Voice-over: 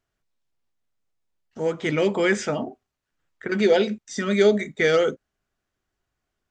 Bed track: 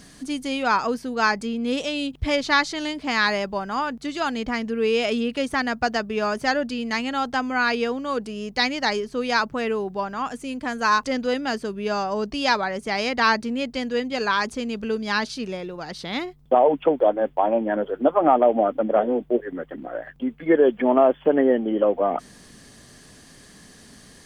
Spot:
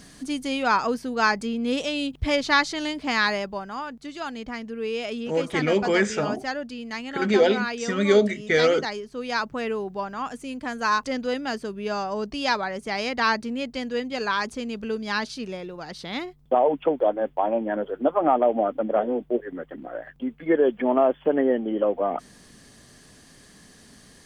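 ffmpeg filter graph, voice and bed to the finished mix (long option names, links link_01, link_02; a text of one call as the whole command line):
ffmpeg -i stem1.wav -i stem2.wav -filter_complex "[0:a]adelay=3700,volume=-0.5dB[link_01];[1:a]volume=4dB,afade=type=out:start_time=3.11:duration=0.67:silence=0.446684,afade=type=in:start_time=9.1:duration=0.47:silence=0.595662[link_02];[link_01][link_02]amix=inputs=2:normalize=0" out.wav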